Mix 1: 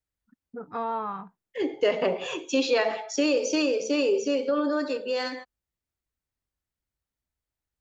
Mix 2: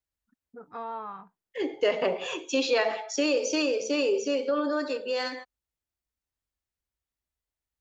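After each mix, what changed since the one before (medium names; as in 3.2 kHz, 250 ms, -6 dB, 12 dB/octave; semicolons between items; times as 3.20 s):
first voice -5.5 dB; master: add peaking EQ 140 Hz -5 dB 2.6 oct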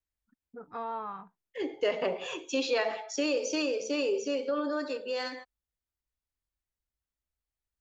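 second voice -4.0 dB; master: add bass shelf 61 Hz +8.5 dB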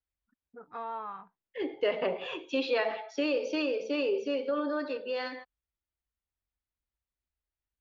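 first voice: add bass shelf 410 Hz -8 dB; master: add low-pass 4 kHz 24 dB/octave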